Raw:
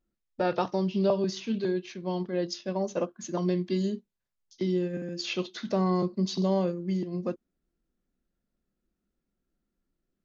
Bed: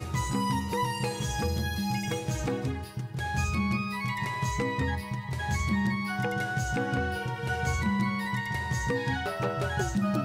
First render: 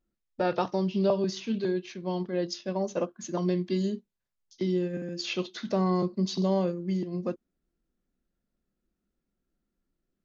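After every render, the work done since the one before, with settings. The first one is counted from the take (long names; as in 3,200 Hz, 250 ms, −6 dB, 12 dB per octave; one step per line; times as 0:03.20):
no processing that can be heard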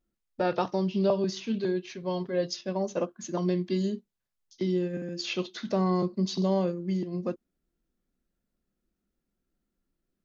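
0:01.89–0:02.61: comb filter 7.4 ms, depth 61%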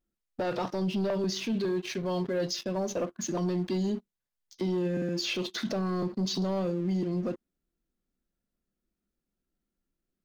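leveller curve on the samples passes 2
brickwall limiter −24 dBFS, peak gain reduction 10.5 dB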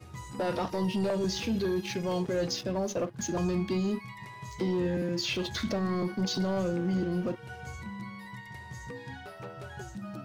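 mix in bed −13 dB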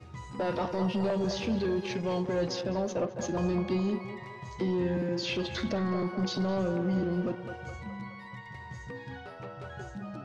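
high-frequency loss of the air 90 metres
feedback echo with a band-pass in the loop 210 ms, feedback 62%, band-pass 820 Hz, level −6 dB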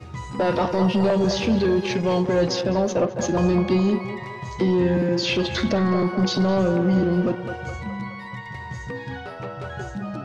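level +9.5 dB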